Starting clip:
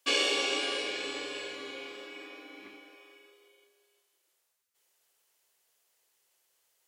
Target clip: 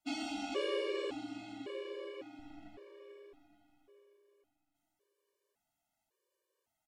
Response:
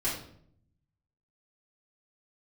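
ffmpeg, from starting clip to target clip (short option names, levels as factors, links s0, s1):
-filter_complex "[0:a]tiltshelf=f=1100:g=9.5,asettb=1/sr,asplit=3[s0][s1][s2];[s0]atrim=end=2.394[s3];[s1]atrim=start=2.39:end=3,asetpts=PTS-STARTPTS,afade=t=in:d=0.004:c=qsin,afade=t=out:st=0.606:d=0.004:c=qsin,aeval=exprs='max(val(0),0)':c=same[s4];[s2]atrim=start=2.996[s5];[s3][s4]acrossfade=d=0.004:c1=hsin:c2=qsin[s6];[s6][s5]acrossfade=d=0.004:c1=qsin:c2=hsin,aecho=1:1:435|870|1305|1740|2175:0.335|0.164|0.0804|0.0394|0.0193,afftfilt=real='re*gt(sin(2*PI*0.9*pts/sr)*(1-2*mod(floor(b*sr/1024/310),2)),0)':imag='im*gt(sin(2*PI*0.9*pts/sr)*(1-2*mod(floor(b*sr/1024/310),2)),0)':win_size=1024:overlap=0.75,volume=0.631"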